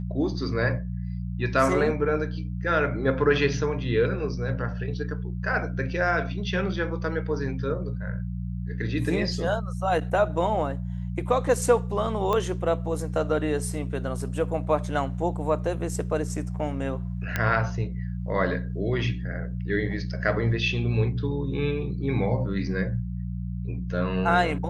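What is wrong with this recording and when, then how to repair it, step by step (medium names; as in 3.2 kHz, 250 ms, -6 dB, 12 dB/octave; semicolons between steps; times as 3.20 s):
hum 60 Hz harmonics 3 -31 dBFS
12.33 s: pop -14 dBFS
17.36 s: pop -11 dBFS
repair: de-click; de-hum 60 Hz, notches 3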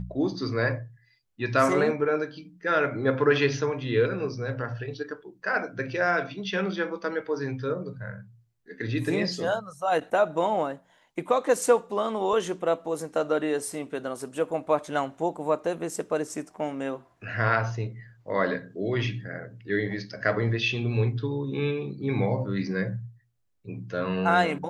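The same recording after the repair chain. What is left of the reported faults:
12.33 s: pop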